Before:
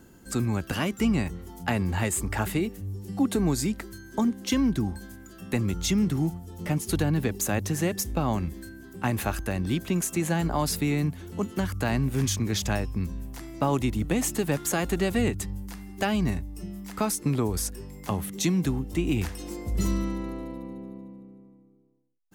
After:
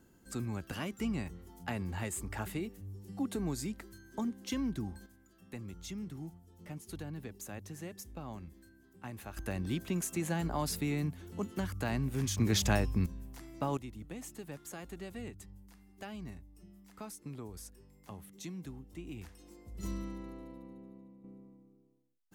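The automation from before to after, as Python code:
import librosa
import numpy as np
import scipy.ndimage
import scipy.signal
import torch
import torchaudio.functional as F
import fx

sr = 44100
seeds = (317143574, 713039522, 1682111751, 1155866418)

y = fx.gain(x, sr, db=fx.steps((0.0, -11.0), (5.06, -18.0), (9.37, -8.0), (12.38, -1.5), (13.06, -9.5), (13.77, -19.0), (19.83, -12.0), (21.24, -3.5)))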